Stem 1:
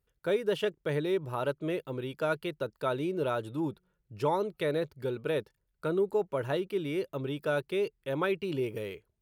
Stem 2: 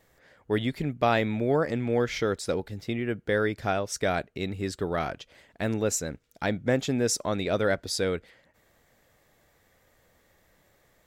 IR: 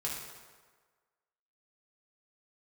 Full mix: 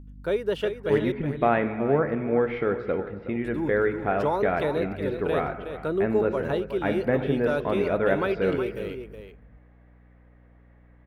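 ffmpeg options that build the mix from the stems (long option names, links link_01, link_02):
-filter_complex "[0:a]aeval=exprs='val(0)+0.00562*(sin(2*PI*50*n/s)+sin(2*PI*2*50*n/s)/2+sin(2*PI*3*50*n/s)/3+sin(2*PI*4*50*n/s)/4+sin(2*PI*5*50*n/s)/5)':channel_layout=same,volume=3dB,asplit=3[link_01][link_02][link_03];[link_01]atrim=end=1.12,asetpts=PTS-STARTPTS,afade=type=out:start_time=1.116:duration=0.004:curve=hsin[link_04];[link_02]atrim=start=1.12:end=3.44,asetpts=PTS-STARTPTS,volume=0[link_05];[link_03]atrim=start=3.44,asetpts=PTS-STARTPTS,afade=type=in:duration=0.004:curve=hsin[link_06];[link_04][link_05][link_06]concat=n=3:v=0:a=1,asplit=2[link_07][link_08];[link_08]volume=-9dB[link_09];[1:a]lowpass=frequency=2400:width=0.5412,lowpass=frequency=2400:width=1.3066,adelay=400,volume=-1dB,asplit=3[link_10][link_11][link_12];[link_11]volume=-7.5dB[link_13];[link_12]volume=-11.5dB[link_14];[2:a]atrim=start_sample=2205[link_15];[link_13][link_15]afir=irnorm=-1:irlink=0[link_16];[link_09][link_14]amix=inputs=2:normalize=0,aecho=0:1:369:1[link_17];[link_07][link_10][link_16][link_17]amix=inputs=4:normalize=0,equalizer=frequency=110:width=2.1:gain=-5.5,aeval=exprs='val(0)+0.00224*(sin(2*PI*60*n/s)+sin(2*PI*2*60*n/s)/2+sin(2*PI*3*60*n/s)/3+sin(2*PI*4*60*n/s)/4+sin(2*PI*5*60*n/s)/5)':channel_layout=same,highshelf=frequency=4000:gain=-7.5"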